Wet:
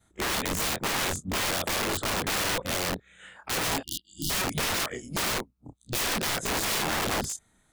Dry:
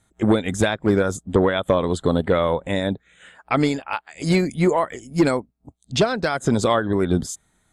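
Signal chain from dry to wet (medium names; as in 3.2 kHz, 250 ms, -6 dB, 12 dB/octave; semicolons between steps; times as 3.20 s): short-time spectra conjugated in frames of 65 ms; integer overflow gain 24.5 dB; spectral selection erased 3.83–4.30 s, 350–2800 Hz; trim +1.5 dB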